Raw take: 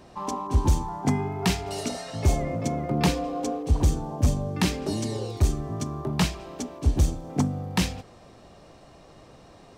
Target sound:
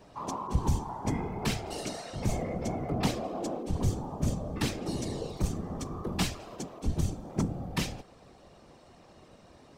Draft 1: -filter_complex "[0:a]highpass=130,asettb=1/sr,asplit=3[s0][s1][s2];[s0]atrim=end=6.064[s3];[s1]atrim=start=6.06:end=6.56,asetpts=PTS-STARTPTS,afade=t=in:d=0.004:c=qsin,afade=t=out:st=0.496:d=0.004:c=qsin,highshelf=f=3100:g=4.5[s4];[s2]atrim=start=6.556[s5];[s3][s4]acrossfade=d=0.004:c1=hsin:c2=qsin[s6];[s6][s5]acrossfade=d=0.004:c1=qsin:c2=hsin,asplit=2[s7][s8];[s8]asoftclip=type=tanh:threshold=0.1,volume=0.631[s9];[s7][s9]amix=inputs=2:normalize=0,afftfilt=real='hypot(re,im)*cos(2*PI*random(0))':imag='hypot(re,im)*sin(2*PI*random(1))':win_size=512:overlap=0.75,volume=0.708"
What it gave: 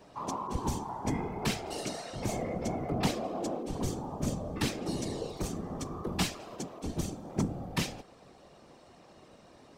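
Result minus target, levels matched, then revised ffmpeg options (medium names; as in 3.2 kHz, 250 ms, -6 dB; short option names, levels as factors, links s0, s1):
125 Hz band -2.5 dB
-filter_complex "[0:a]highpass=34,asettb=1/sr,asplit=3[s0][s1][s2];[s0]atrim=end=6.064[s3];[s1]atrim=start=6.06:end=6.56,asetpts=PTS-STARTPTS,afade=t=in:d=0.004:c=qsin,afade=t=out:st=0.496:d=0.004:c=qsin,highshelf=f=3100:g=4.5[s4];[s2]atrim=start=6.556[s5];[s3][s4]acrossfade=d=0.004:c1=hsin:c2=qsin[s6];[s6][s5]acrossfade=d=0.004:c1=qsin:c2=hsin,asplit=2[s7][s8];[s8]asoftclip=type=tanh:threshold=0.1,volume=0.631[s9];[s7][s9]amix=inputs=2:normalize=0,afftfilt=real='hypot(re,im)*cos(2*PI*random(0))':imag='hypot(re,im)*sin(2*PI*random(1))':win_size=512:overlap=0.75,volume=0.708"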